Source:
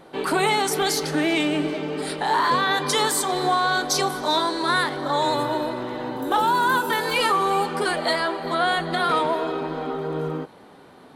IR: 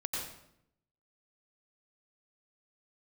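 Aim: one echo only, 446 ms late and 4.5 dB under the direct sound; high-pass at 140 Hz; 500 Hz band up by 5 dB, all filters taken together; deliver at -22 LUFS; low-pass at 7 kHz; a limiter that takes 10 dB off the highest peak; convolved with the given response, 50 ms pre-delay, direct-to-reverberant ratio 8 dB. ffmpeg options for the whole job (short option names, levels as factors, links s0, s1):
-filter_complex "[0:a]highpass=140,lowpass=7000,equalizer=f=500:t=o:g=6.5,alimiter=limit=0.15:level=0:latency=1,aecho=1:1:446:0.596,asplit=2[s0][s1];[1:a]atrim=start_sample=2205,adelay=50[s2];[s1][s2]afir=irnorm=-1:irlink=0,volume=0.266[s3];[s0][s3]amix=inputs=2:normalize=0,volume=1.12"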